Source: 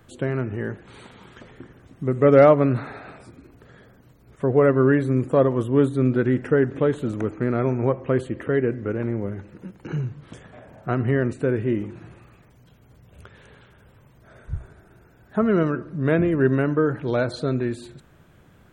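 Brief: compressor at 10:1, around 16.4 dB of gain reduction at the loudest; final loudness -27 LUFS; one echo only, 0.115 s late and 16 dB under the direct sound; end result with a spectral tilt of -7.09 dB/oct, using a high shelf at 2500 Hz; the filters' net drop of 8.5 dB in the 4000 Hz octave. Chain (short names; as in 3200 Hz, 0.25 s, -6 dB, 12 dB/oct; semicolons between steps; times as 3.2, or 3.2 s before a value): high shelf 2500 Hz -8.5 dB; bell 4000 Hz -3.5 dB; compressor 10:1, threshold -26 dBFS; echo 0.115 s -16 dB; gain +5.5 dB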